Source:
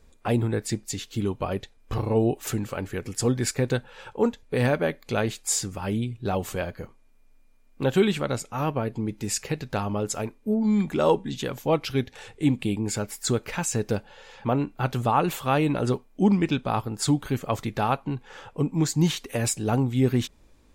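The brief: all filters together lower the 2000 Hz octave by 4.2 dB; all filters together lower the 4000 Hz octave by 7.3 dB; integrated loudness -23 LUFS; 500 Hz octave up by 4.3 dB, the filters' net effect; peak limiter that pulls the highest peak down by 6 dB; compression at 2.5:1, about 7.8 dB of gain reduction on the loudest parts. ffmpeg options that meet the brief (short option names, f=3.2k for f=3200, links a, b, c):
-af "equalizer=f=500:t=o:g=5.5,equalizer=f=2k:t=o:g=-4,equalizer=f=4k:t=o:g=-8.5,acompressor=threshold=-24dB:ratio=2.5,volume=7dB,alimiter=limit=-11.5dB:level=0:latency=1"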